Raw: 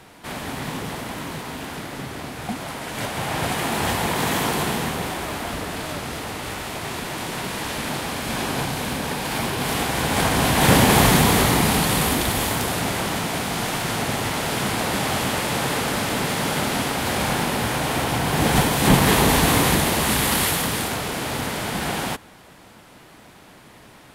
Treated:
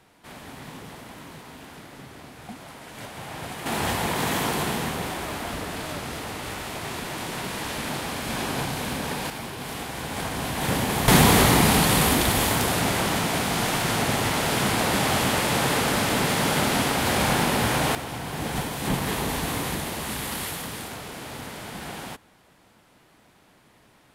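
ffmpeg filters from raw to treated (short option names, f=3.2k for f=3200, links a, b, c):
-af "asetnsamples=n=441:p=0,asendcmd='3.66 volume volume -3dB;9.3 volume volume -10dB;11.08 volume volume 0.5dB;17.95 volume volume -10.5dB',volume=-11dB"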